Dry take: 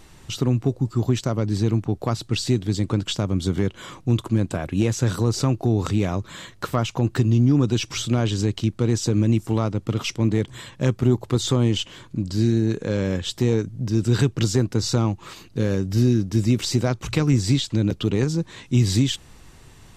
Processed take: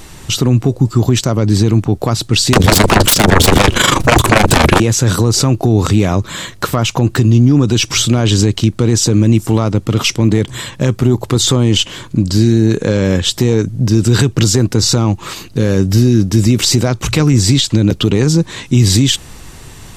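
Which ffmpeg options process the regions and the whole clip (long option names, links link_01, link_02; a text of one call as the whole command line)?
ffmpeg -i in.wav -filter_complex "[0:a]asettb=1/sr,asplit=3[link_01][link_02][link_03];[link_01]atrim=end=2.534[link_04];[link_02]atrim=start=2.53:end=4.8,asetpts=PTS-STARTPTS,afade=type=in:duration=0.004:curve=qsin,afade=type=out:start_time=2.266:duration=0.004:curve=qsin,aeval=exprs='0.376*sin(PI/2*10*val(0)/0.376)':channel_layout=same,tremolo=f=25:d=0.824[link_05];[link_03]atrim=start=4.796[link_06];[link_04][link_05]acrossfade=duration=0.004:curve1=hsin:curve2=qsin[link_07];[link_07][link_06]acrossfade=duration=0.004:curve1=qsin:curve2=hsin,highshelf=frequency=6400:gain=5.5,alimiter=level_in=14dB:limit=-1dB:release=50:level=0:latency=1,volume=-1dB" out.wav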